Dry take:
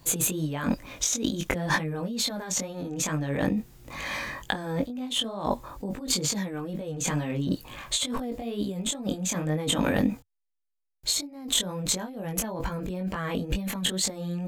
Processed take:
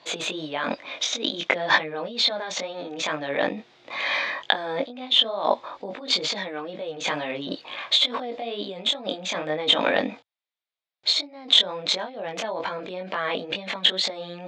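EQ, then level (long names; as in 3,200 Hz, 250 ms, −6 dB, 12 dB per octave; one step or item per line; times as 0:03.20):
loudspeaker in its box 470–4,600 Hz, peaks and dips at 650 Hz +5 dB, 2,200 Hz +4 dB, 3,600 Hz +7 dB
+5.5 dB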